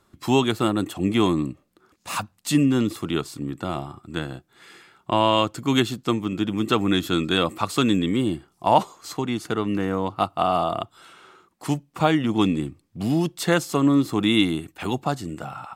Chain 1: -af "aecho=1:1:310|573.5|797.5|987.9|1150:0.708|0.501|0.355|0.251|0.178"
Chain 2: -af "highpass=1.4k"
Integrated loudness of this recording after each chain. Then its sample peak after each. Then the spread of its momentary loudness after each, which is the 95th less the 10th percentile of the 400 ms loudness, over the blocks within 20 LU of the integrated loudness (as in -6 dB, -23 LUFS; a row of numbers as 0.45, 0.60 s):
-21.0, -31.0 LUFS; -3.0, -7.0 dBFS; 8, 16 LU